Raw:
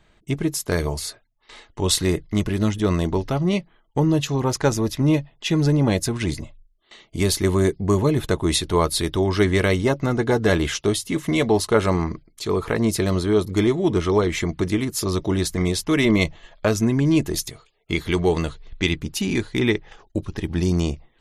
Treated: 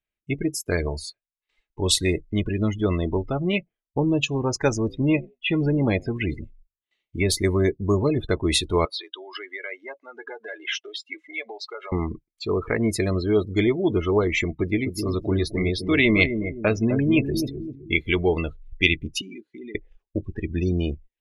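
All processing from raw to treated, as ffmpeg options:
ffmpeg -i in.wav -filter_complex "[0:a]asettb=1/sr,asplit=3[link_01][link_02][link_03];[link_01]atrim=end=4.774[link_04];[link_02]atrim=start=4.77:end=7.3,asetpts=PTS-STARTPTS,afade=type=in:duration=0.004:curve=qsin,afade=type=out:start_time=2.526:duration=0.004:curve=qsin,acrossover=split=3200[link_05][link_06];[link_06]acompressor=threshold=-37dB:ratio=4:attack=1:release=60[link_07];[link_05][link_07]amix=inputs=2:normalize=0,asplit=3[link_08][link_09][link_10];[link_09]adelay=91,afreqshift=51,volume=-22dB[link_11];[link_10]adelay=182,afreqshift=102,volume=-31.4dB[link_12];[link_08][link_11][link_12]amix=inputs=3:normalize=0,atrim=end_sample=111573[link_13];[link_03]atrim=start=7.296[link_14];[link_04][link_13]acrossfade=duration=0.004:curve1=hsin:curve2=qsin[link_15];[link_15][link_14]acrossfade=duration=0.004:curve1=qsin:curve2=hsin,asettb=1/sr,asplit=3[link_16][link_17][link_18];[link_16]atrim=end=8.854[link_19];[link_17]atrim=start=8.85:end=11.92,asetpts=PTS-STARTPTS,afade=type=in:duration=0.004:curve=qsin,afade=type=out:start_time=3.066:duration=0.004:curve=qsin,acompressor=threshold=-21dB:ratio=16:attack=3.2:release=140:knee=1:detection=peak,highpass=680,lowpass=5900[link_20];[link_18]atrim=start=11.916[link_21];[link_19][link_20]acrossfade=duration=0.004:curve1=hsin:curve2=qsin[link_22];[link_22][link_21]acrossfade=duration=0.004:curve1=qsin:curve2=hsin,asettb=1/sr,asplit=3[link_23][link_24][link_25];[link_23]atrim=end=14.544[link_26];[link_24]atrim=start=14.54:end=18,asetpts=PTS-STARTPTS,afade=type=in:duration=0.004:curve=qsin,afade=type=out:start_time=3.456:duration=0.004:curve=qsin,equalizer=frequency=7600:width_type=o:width=0.61:gain=-9.5,asplit=2[link_27][link_28];[link_28]adelay=258,lowpass=frequency=1100:poles=1,volume=-6.5dB,asplit=2[link_29][link_30];[link_30]adelay=258,lowpass=frequency=1100:poles=1,volume=0.42,asplit=2[link_31][link_32];[link_32]adelay=258,lowpass=frequency=1100:poles=1,volume=0.42,asplit=2[link_33][link_34];[link_34]adelay=258,lowpass=frequency=1100:poles=1,volume=0.42,asplit=2[link_35][link_36];[link_36]adelay=258,lowpass=frequency=1100:poles=1,volume=0.42[link_37];[link_27][link_29][link_31][link_33][link_35][link_37]amix=inputs=6:normalize=0,atrim=end_sample=152586[link_38];[link_25]atrim=start=17.996[link_39];[link_26][link_38]acrossfade=duration=0.004:curve1=hsin:curve2=qsin[link_40];[link_40][link_39]acrossfade=duration=0.004:curve1=qsin:curve2=hsin,asettb=1/sr,asplit=3[link_41][link_42][link_43];[link_41]atrim=end=19.214[link_44];[link_42]atrim=start=19.21:end=19.75,asetpts=PTS-STARTPTS,afade=type=in:duration=0.004:curve=qsin,afade=type=out:start_time=0.536:duration=0.004:curve=qsin,highpass=frequency=180:width=0.5412,highpass=frequency=180:width=1.3066,acompressor=threshold=-37dB:ratio=3:attack=3.2:release=140:knee=1:detection=peak[link_45];[link_43]atrim=start=19.746[link_46];[link_44][link_45]acrossfade=duration=0.004:curve1=hsin:curve2=qsin[link_47];[link_47][link_46]acrossfade=duration=0.004:curve1=qsin:curve2=hsin,afftdn=noise_reduction=33:noise_floor=-29,equalizer=frequency=160:width_type=o:width=0.67:gain=-5,equalizer=frequency=1000:width_type=o:width=0.67:gain=-4,equalizer=frequency=2500:width_type=o:width=0.67:gain=10,volume=-1dB" out.wav

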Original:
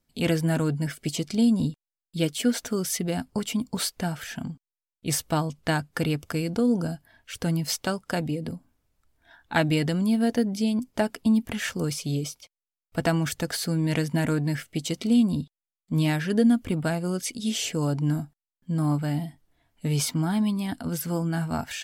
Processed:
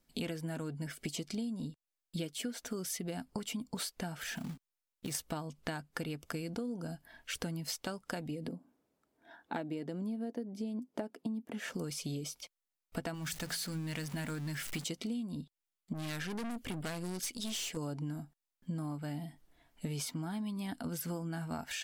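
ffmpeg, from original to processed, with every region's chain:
ffmpeg -i in.wav -filter_complex "[0:a]asettb=1/sr,asplit=3[link_01][link_02][link_03];[link_01]atrim=end=4.204[link_04];[link_02]atrim=start=4.2:end=5.15,asetpts=PTS-STARTPTS,afade=type=in:duration=0.004:curve=qsin,afade=type=out:start_time=0.946:duration=0.004:curve=qsin,acompressor=threshold=-33dB:ratio=10:attack=3.2:release=140:knee=1:detection=peak,acrusher=bits=4:mode=log:mix=0:aa=0.000001[link_05];[link_03]atrim=start=5.146[link_06];[link_04][link_05]acrossfade=duration=0.004:curve1=hsin:curve2=qsin[link_07];[link_07][link_06]acrossfade=duration=0.004:curve1=qsin:curve2=hsin,asettb=1/sr,asplit=3[link_08][link_09][link_10];[link_08]atrim=end=8.484[link_11];[link_09]atrim=start=8.48:end=11.74,asetpts=PTS-STARTPTS,afade=type=in:duration=0.004:curve=qsin,afade=type=out:start_time=3.256:duration=0.004:curve=qsin,highpass=290,tiltshelf=frequency=780:gain=9[link_12];[link_10]atrim=start=11.736[link_13];[link_11][link_12]acrossfade=duration=0.004:curve1=hsin:curve2=qsin[link_14];[link_14][link_13]acrossfade=duration=0.004:curve1=qsin:curve2=hsin,asettb=1/sr,asplit=3[link_15][link_16][link_17];[link_15]atrim=end=13.144[link_18];[link_16]atrim=start=13.14:end=14.84,asetpts=PTS-STARTPTS,afade=type=in:duration=0.004:curve=qsin,afade=type=out:start_time=1.696:duration=0.004:curve=qsin,aeval=exprs='val(0)+0.5*0.0224*sgn(val(0))':channel_layout=same,equalizer=frequency=430:width_type=o:width=2.2:gain=-8,bandreject=frequency=56.2:width_type=h:width=4,bandreject=frequency=112.4:width_type=h:width=4,bandreject=frequency=168.6:width_type=h:width=4,bandreject=frequency=224.8:width_type=h:width=4,bandreject=frequency=281:width_type=h:width=4[link_19];[link_17]atrim=start=14.836[link_20];[link_18][link_19]acrossfade=duration=0.004:curve1=hsin:curve2=qsin[link_21];[link_21][link_20]acrossfade=duration=0.004:curve1=qsin:curve2=hsin,asettb=1/sr,asplit=3[link_22][link_23][link_24];[link_22]atrim=end=15.934[link_25];[link_23]atrim=start=15.93:end=17.77,asetpts=PTS-STARTPTS,afade=type=in:duration=0.004:curve=qsin,afade=type=out:start_time=1.836:duration=0.004:curve=qsin,aeval=exprs='(tanh(31.6*val(0)+0.5)-tanh(0.5))/31.6':channel_layout=same,adynamicequalizer=threshold=0.00355:dfrequency=1700:dqfactor=0.7:tfrequency=1700:tqfactor=0.7:attack=5:release=100:ratio=0.375:range=3:mode=boostabove:tftype=highshelf[link_26];[link_24]atrim=start=17.766[link_27];[link_25][link_26]acrossfade=duration=0.004:curve1=hsin:curve2=qsin[link_28];[link_28][link_27]acrossfade=duration=0.004:curve1=qsin:curve2=hsin,equalizer=frequency=100:width_type=o:width=0.71:gain=-10,acompressor=threshold=-37dB:ratio=12,volume=1.5dB" out.wav

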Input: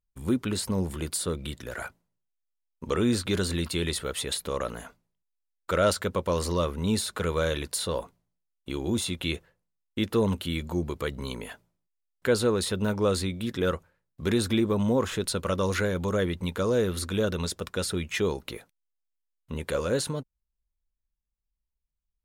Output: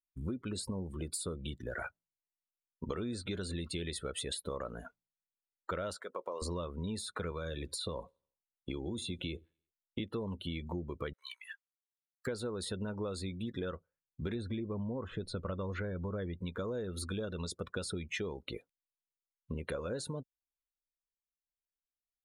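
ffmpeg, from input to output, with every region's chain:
ffmpeg -i in.wav -filter_complex "[0:a]asettb=1/sr,asplit=3[link_01][link_02][link_03];[link_01]atrim=end=5.964[link_04];[link_02]atrim=start=5.96:end=6.42,asetpts=PTS-STARTPTS,afade=type=in:duration=0.004:curve=qsin,afade=type=out:start_time=0.456:duration=0.004:curve=qsin,highpass=430,acompressor=threshold=-33dB:ratio=2:attack=3.2:release=140:knee=1:detection=peak,acrusher=bits=8:mode=log:mix=0:aa=0.000001[link_05];[link_03]atrim=start=6.416[link_06];[link_04][link_05]acrossfade=duration=0.004:curve1=hsin:curve2=qsin[link_07];[link_07][link_06]acrossfade=duration=0.004:curve1=qsin:curve2=hsin,asettb=1/sr,asplit=3[link_08][link_09][link_10];[link_08]atrim=end=7.314[link_11];[link_09]atrim=start=7.31:end=10,asetpts=PTS-STARTPTS,afade=type=in:duration=0.004:curve=qsin,afade=type=out:start_time=2.686:duration=0.004:curve=qsin,acrossover=split=320|900|5700[link_12][link_13][link_14][link_15];[link_12]acompressor=threshold=-33dB:ratio=3[link_16];[link_13]acompressor=threshold=-36dB:ratio=3[link_17];[link_14]acompressor=threshold=-36dB:ratio=3[link_18];[link_15]acompressor=threshold=-40dB:ratio=3[link_19];[link_16][link_17][link_18][link_19]amix=inputs=4:normalize=0,aecho=1:1:86|172|258|344:0.075|0.0397|0.0211|0.0112,atrim=end_sample=118629[link_20];[link_10]atrim=start=9.996[link_21];[link_11][link_20]acrossfade=duration=0.004:curve1=hsin:curve2=qsin[link_22];[link_22][link_21]acrossfade=duration=0.004:curve1=qsin:curve2=hsin,asettb=1/sr,asplit=3[link_23][link_24][link_25];[link_23]atrim=end=11.134[link_26];[link_24]atrim=start=11.13:end=12.27,asetpts=PTS-STARTPTS,afade=type=in:duration=0.004:curve=qsin,afade=type=out:start_time=1.136:duration=0.004:curve=qsin,highpass=frequency=1200:width=0.5412,highpass=frequency=1200:width=1.3066,aeval=exprs='(mod(20*val(0)+1,2)-1)/20':channel_layout=same[link_27];[link_25]atrim=start=12.266[link_28];[link_26][link_27]acrossfade=duration=0.004:curve1=hsin:curve2=qsin[link_29];[link_29][link_28]acrossfade=duration=0.004:curve1=qsin:curve2=hsin,asettb=1/sr,asplit=3[link_30][link_31][link_32];[link_30]atrim=end=14.354[link_33];[link_31]atrim=start=14.35:end=16.35,asetpts=PTS-STARTPTS,afade=type=in:duration=0.004:curve=qsin,afade=type=out:start_time=1.996:duration=0.004:curve=qsin,lowpass=frequency=3200:poles=1,lowshelf=frequency=140:gain=7[link_34];[link_32]atrim=start=16.346[link_35];[link_33][link_34]acrossfade=duration=0.004:curve1=hsin:curve2=qsin[link_36];[link_36][link_35]acrossfade=duration=0.004:curve1=qsin:curve2=hsin,afftdn=noise_reduction=24:noise_floor=-38,acompressor=threshold=-35dB:ratio=10" out.wav

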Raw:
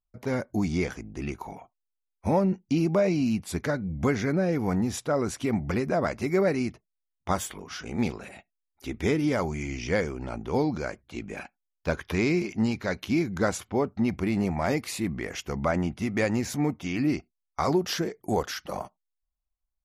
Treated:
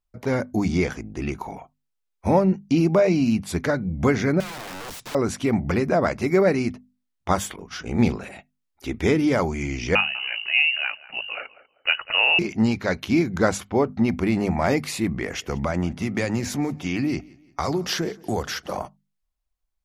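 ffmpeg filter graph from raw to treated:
ffmpeg -i in.wav -filter_complex "[0:a]asettb=1/sr,asplit=3[link_01][link_02][link_03];[link_01]atrim=end=4.404[link_04];[link_02]atrim=start=4.4:end=5.15,asetpts=PTS-STARTPTS,afade=type=in:duration=0.004:curve=qsin,afade=type=out:start_time=0.746:duration=0.004:curve=qsin,acompressor=threshold=-35dB:ratio=2.5:attack=3.2:release=140:knee=1:detection=peak,aeval=exprs='(mod(59.6*val(0)+1,2)-1)/59.6':channel_layout=same[link_05];[link_03]atrim=start=5.146[link_06];[link_04][link_05]acrossfade=duration=0.004:curve1=hsin:curve2=qsin[link_07];[link_07][link_06]acrossfade=duration=0.004:curve1=qsin:curve2=hsin,asettb=1/sr,asplit=3[link_08][link_09][link_10];[link_08]atrim=end=7.564[link_11];[link_09]atrim=start=7.56:end=8.16,asetpts=PTS-STARTPTS,afade=type=in:duration=0.004:curve=qsin,afade=type=out:start_time=0.596:duration=0.004:curve=qsin,agate=range=-33dB:threshold=-37dB:ratio=3:release=100:detection=peak,lowshelf=frequency=240:gain=6[link_12];[link_10]atrim=start=8.156[link_13];[link_11][link_12]acrossfade=duration=0.004:curve1=hsin:curve2=qsin[link_14];[link_14][link_13]acrossfade=duration=0.004:curve1=qsin:curve2=hsin,asettb=1/sr,asplit=3[link_15][link_16][link_17];[link_15]atrim=end=9.954[link_18];[link_16]atrim=start=9.95:end=12.39,asetpts=PTS-STARTPTS,afade=type=in:duration=0.004:curve=qsin,afade=type=out:start_time=2.436:duration=0.004:curve=qsin,lowpass=frequency=2600:width_type=q:width=0.5098,lowpass=frequency=2600:width_type=q:width=0.6013,lowpass=frequency=2600:width_type=q:width=0.9,lowpass=frequency=2600:width_type=q:width=2.563,afreqshift=-3000,asplit=2[link_19][link_20];[link_20]adelay=195,lowpass=frequency=1100:poles=1,volume=-14dB,asplit=2[link_21][link_22];[link_22]adelay=195,lowpass=frequency=1100:poles=1,volume=0.31,asplit=2[link_23][link_24];[link_24]adelay=195,lowpass=frequency=1100:poles=1,volume=0.31[link_25];[link_19][link_21][link_23][link_25]amix=inputs=4:normalize=0,atrim=end_sample=107604[link_26];[link_17]atrim=start=12.386[link_27];[link_18][link_26]acrossfade=duration=0.004:curve1=hsin:curve2=qsin[link_28];[link_28][link_27]acrossfade=duration=0.004:curve1=qsin:curve2=hsin,asettb=1/sr,asplit=3[link_29][link_30][link_31];[link_29]atrim=end=15.234[link_32];[link_30]atrim=start=15.23:end=18.82,asetpts=PTS-STARTPTS,afade=type=in:duration=0.004:curve=qsin,afade=type=out:start_time=3.586:duration=0.004:curve=qsin,acrossover=split=130|3000[link_33][link_34][link_35];[link_34]acompressor=threshold=-26dB:ratio=6:attack=3.2:release=140:knee=2.83:detection=peak[link_36];[link_33][link_36][link_35]amix=inputs=3:normalize=0,aecho=1:1:174|348|522:0.0631|0.0259|0.0106,atrim=end_sample=158319[link_37];[link_31]atrim=start=18.816[link_38];[link_32][link_37]acrossfade=duration=0.004:curve1=hsin:curve2=qsin[link_39];[link_39][link_38]acrossfade=duration=0.004:curve1=qsin:curve2=hsin,highshelf=frequency=7800:gain=-4.5,bandreject=frequency=50:width_type=h:width=6,bandreject=frequency=100:width_type=h:width=6,bandreject=frequency=150:width_type=h:width=6,bandreject=frequency=200:width_type=h:width=6,bandreject=frequency=250:width_type=h:width=6,volume=5.5dB" out.wav

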